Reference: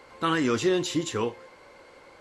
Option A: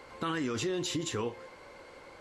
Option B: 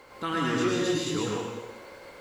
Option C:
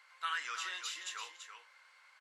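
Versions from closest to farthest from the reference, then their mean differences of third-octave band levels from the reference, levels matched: A, B, C; 4.5, 8.0, 12.0 decibels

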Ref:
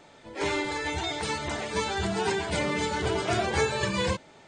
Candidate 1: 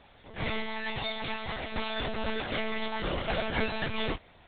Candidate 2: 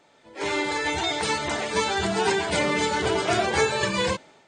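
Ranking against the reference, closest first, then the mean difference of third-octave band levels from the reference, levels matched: 2, 1; 2.0, 8.5 decibels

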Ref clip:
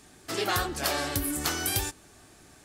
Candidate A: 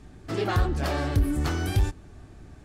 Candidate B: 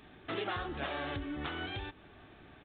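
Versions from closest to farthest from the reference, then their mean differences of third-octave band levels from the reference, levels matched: A, B; 7.5, 12.5 decibels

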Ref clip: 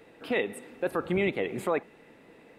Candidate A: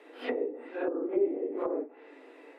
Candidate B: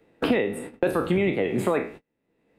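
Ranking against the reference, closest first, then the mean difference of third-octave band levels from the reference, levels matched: B, A; 6.0, 9.5 decibels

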